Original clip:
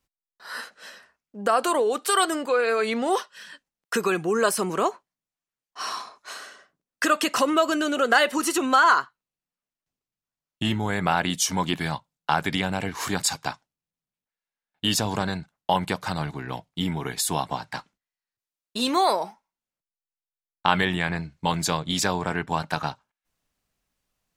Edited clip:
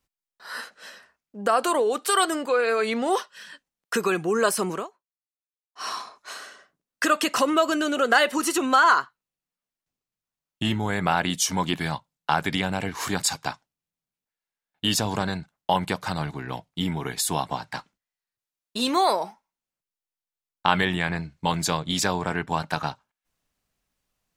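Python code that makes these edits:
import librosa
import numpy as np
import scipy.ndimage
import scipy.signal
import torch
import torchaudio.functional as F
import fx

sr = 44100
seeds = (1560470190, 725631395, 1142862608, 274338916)

y = fx.edit(x, sr, fx.fade_down_up(start_s=4.71, length_s=1.16, db=-21.5, fade_s=0.16), tone=tone)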